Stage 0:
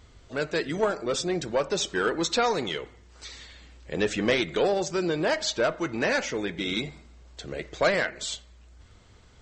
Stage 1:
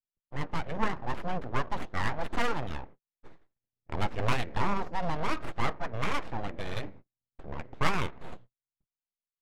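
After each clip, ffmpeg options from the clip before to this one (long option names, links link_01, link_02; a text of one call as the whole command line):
ffmpeg -i in.wav -af "aeval=exprs='abs(val(0))':channel_layout=same,adynamicsmooth=sensitivity=2.5:basefreq=920,agate=range=-55dB:threshold=-45dB:ratio=16:detection=peak" out.wav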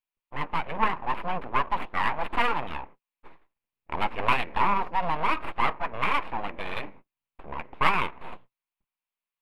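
ffmpeg -i in.wav -af "equalizer=frequency=100:width_type=o:width=0.67:gain=-12,equalizer=frequency=1000:width_type=o:width=0.67:gain=10,equalizer=frequency=2500:width_type=o:width=0.67:gain=10,equalizer=frequency=6300:width_type=o:width=0.67:gain=-11" out.wav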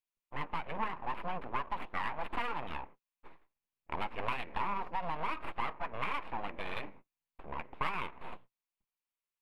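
ffmpeg -i in.wav -af "acompressor=threshold=-26dB:ratio=4,volume=-5dB" out.wav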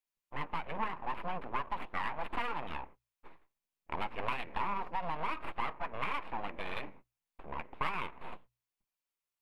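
ffmpeg -i in.wav -af "bandreject=frequency=60:width_type=h:width=6,bandreject=frequency=120:width_type=h:width=6" out.wav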